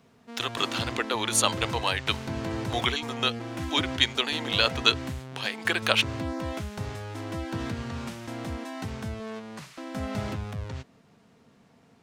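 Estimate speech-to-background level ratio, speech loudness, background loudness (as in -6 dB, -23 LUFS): 8.5 dB, -26.5 LUFS, -35.0 LUFS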